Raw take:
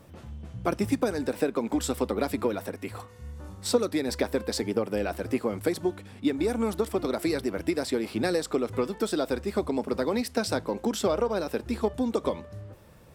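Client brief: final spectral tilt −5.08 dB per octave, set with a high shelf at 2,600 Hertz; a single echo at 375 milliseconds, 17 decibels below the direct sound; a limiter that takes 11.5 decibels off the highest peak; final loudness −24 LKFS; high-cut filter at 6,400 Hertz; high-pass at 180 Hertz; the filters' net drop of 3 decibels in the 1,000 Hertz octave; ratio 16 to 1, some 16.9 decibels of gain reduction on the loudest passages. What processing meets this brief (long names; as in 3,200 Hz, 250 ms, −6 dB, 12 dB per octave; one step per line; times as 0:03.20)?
high-pass filter 180 Hz
low-pass filter 6,400 Hz
parametric band 1,000 Hz −3.5 dB
high-shelf EQ 2,600 Hz −4 dB
downward compressor 16 to 1, threshold −37 dBFS
brickwall limiter −36.5 dBFS
single-tap delay 375 ms −17 dB
level +23 dB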